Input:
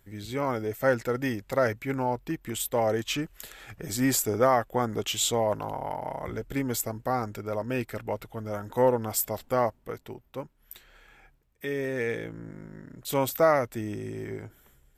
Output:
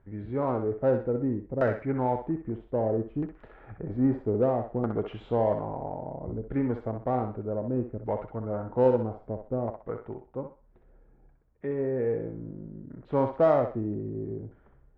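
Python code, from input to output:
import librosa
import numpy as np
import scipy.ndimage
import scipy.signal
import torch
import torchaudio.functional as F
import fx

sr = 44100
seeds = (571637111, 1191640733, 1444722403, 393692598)

p1 = scipy.signal.sosfilt(scipy.signal.butter(2, 3200.0, 'lowpass', fs=sr, output='sos'), x)
p2 = fx.high_shelf(p1, sr, hz=2400.0, db=-10.5)
p3 = fx.filter_lfo_lowpass(p2, sr, shape='saw_down', hz=0.62, low_hz=340.0, high_hz=1600.0, q=0.75)
p4 = 10.0 ** (-26.5 / 20.0) * np.tanh(p3 / 10.0 ** (-26.5 / 20.0))
p5 = p3 + (p4 * librosa.db_to_amplitude(-9.0))
y = fx.echo_thinned(p5, sr, ms=63, feedback_pct=36, hz=570.0, wet_db=-5)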